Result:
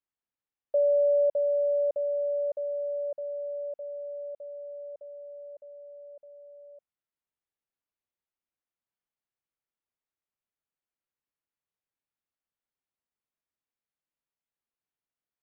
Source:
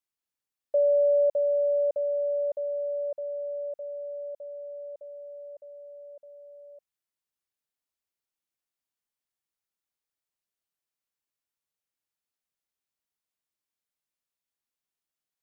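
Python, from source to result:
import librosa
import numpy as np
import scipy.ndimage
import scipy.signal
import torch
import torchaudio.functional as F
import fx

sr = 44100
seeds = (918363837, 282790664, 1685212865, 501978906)

y = fx.air_absorb(x, sr, metres=380.0)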